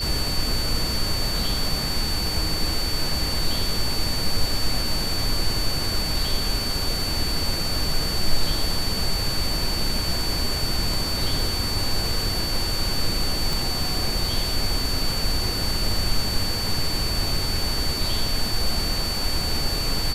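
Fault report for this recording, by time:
whine 4.5 kHz -27 dBFS
13.53 s: pop

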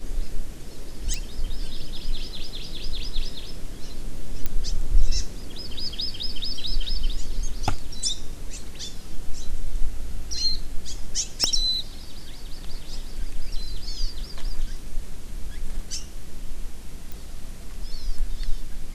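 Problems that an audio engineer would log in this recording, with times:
1.14 s: pop
4.46 s: pop -10 dBFS
11.44 s: pop -8 dBFS
17.12 s: pop

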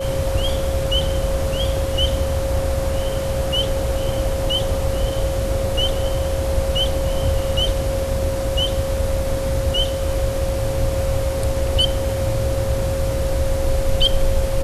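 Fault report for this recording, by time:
whine 540 Hz -23 dBFS

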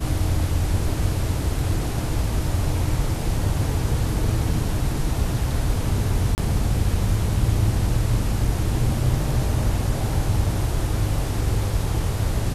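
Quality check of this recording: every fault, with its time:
6.35–6.38 s: dropout 29 ms

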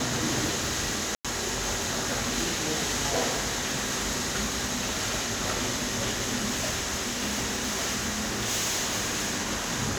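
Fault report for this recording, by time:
crackle 140 per s -32 dBFS
1.15–1.25 s: dropout 96 ms
6.47–9.35 s: clipped -24 dBFS

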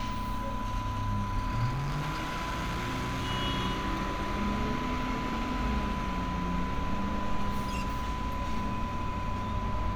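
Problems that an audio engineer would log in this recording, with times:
whine 1 kHz -36 dBFS
1.71–3.31 s: clipped -29 dBFS

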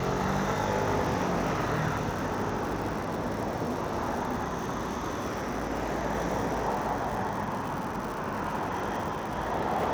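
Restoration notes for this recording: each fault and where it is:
crackle 190 per s -34 dBFS

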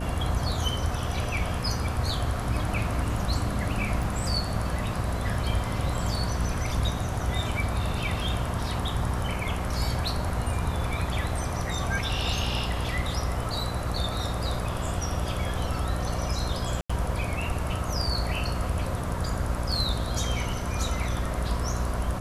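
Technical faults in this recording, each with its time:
buzz 60 Hz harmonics 10 -32 dBFS
4.03 s: dropout 2.3 ms
16.81–16.89 s: dropout 85 ms

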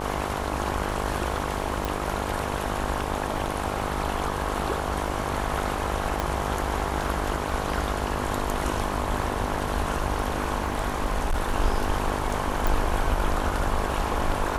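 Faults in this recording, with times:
buzz 50 Hz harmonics 22 -31 dBFS
crackle 20 per s -34 dBFS
1.85 s: pop
6.20 s: pop -11 dBFS
10.64–11.56 s: clipped -19.5 dBFS
12.67 s: pop

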